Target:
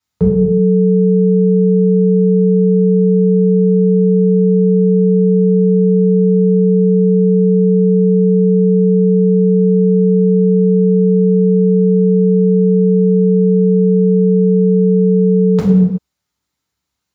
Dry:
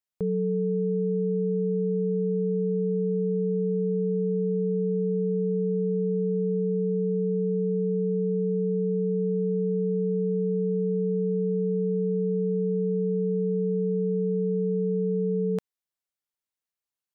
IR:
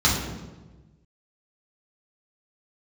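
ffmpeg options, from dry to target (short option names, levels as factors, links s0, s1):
-filter_complex "[1:a]atrim=start_sample=2205,afade=t=out:st=0.44:d=0.01,atrim=end_sample=19845[s0];[0:a][s0]afir=irnorm=-1:irlink=0"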